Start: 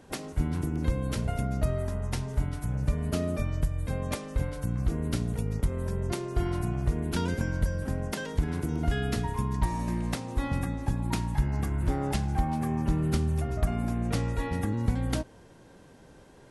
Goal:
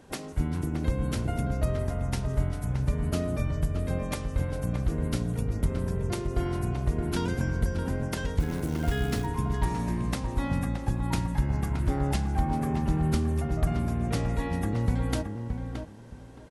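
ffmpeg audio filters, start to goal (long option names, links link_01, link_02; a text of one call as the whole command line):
ffmpeg -i in.wav -filter_complex "[0:a]asettb=1/sr,asplit=3[link_01][link_02][link_03];[link_01]atrim=end=8.404[link_04];[link_02]atrim=start=8.4:end=9.26,asetpts=PTS-STARTPTS,afade=type=in:duration=0.004:curve=qsin,afade=type=out:start_time=0.856:duration=0.004:curve=qsin,acrusher=bits=5:mode=log:mix=0:aa=0.000001[link_05];[link_03]atrim=start=9.256[link_06];[link_04][link_05]acrossfade=duration=0.004:curve1=hsin:curve2=qsin[link_07];[link_07][link_06]acrossfade=duration=0.004:curve1=qsin:curve2=hsin,asplit=2[link_08][link_09];[link_09]adelay=621,lowpass=frequency=2000:poles=1,volume=-6dB,asplit=2[link_10][link_11];[link_11]adelay=621,lowpass=frequency=2000:poles=1,volume=0.21,asplit=2[link_12][link_13];[link_13]adelay=621,lowpass=frequency=2000:poles=1,volume=0.21[link_14];[link_08][link_10][link_12][link_14]amix=inputs=4:normalize=0" out.wav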